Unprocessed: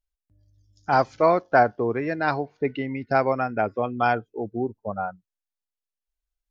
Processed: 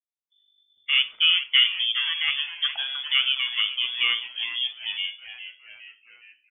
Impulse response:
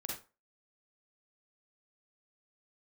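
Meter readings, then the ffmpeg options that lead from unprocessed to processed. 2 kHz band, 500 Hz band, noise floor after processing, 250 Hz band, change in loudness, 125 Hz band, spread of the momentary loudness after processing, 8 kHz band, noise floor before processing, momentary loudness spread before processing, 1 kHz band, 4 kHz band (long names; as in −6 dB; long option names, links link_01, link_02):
+3.5 dB, below −35 dB, −77 dBFS, below −35 dB, +2.0 dB, below −35 dB, 14 LU, can't be measured, below −85 dBFS, 11 LU, −21.0 dB, +28.0 dB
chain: -filter_complex "[0:a]agate=range=-33dB:threshold=-57dB:ratio=3:detection=peak,lowpass=frequency=3100:width_type=q:width=0.5098,lowpass=frequency=3100:width_type=q:width=0.6013,lowpass=frequency=3100:width_type=q:width=0.9,lowpass=frequency=3100:width_type=q:width=2.563,afreqshift=-3600,bandreject=frequency=55.42:width_type=h:width=4,bandreject=frequency=110.84:width_type=h:width=4,bandreject=frequency=166.26:width_type=h:width=4,bandreject=frequency=221.68:width_type=h:width=4,bandreject=frequency=277.1:width_type=h:width=4,bandreject=frequency=332.52:width_type=h:width=4,bandreject=frequency=387.94:width_type=h:width=4,bandreject=frequency=443.36:width_type=h:width=4,bandreject=frequency=498.78:width_type=h:width=4,bandreject=frequency=554.2:width_type=h:width=4,bandreject=frequency=609.62:width_type=h:width=4,bandreject=frequency=665.04:width_type=h:width=4,bandreject=frequency=720.46:width_type=h:width=4,bandreject=frequency=775.88:width_type=h:width=4,bandreject=frequency=831.3:width_type=h:width=4,bandreject=frequency=886.72:width_type=h:width=4,bandreject=frequency=942.14:width_type=h:width=4,bandreject=frequency=997.56:width_type=h:width=4,bandreject=frequency=1052.98:width_type=h:width=4,bandreject=frequency=1108.4:width_type=h:width=4,asplit=7[link_01][link_02][link_03][link_04][link_05][link_06][link_07];[link_02]adelay=413,afreqshift=-140,volume=-12dB[link_08];[link_03]adelay=826,afreqshift=-280,volume=-17.5dB[link_09];[link_04]adelay=1239,afreqshift=-420,volume=-23dB[link_10];[link_05]adelay=1652,afreqshift=-560,volume=-28.5dB[link_11];[link_06]adelay=2065,afreqshift=-700,volume=-34.1dB[link_12];[link_07]adelay=2478,afreqshift=-840,volume=-39.6dB[link_13];[link_01][link_08][link_09][link_10][link_11][link_12][link_13]amix=inputs=7:normalize=0,asplit=2[link_14][link_15];[1:a]atrim=start_sample=2205[link_16];[link_15][link_16]afir=irnorm=-1:irlink=0,volume=-10.5dB[link_17];[link_14][link_17]amix=inputs=2:normalize=0,volume=-3dB"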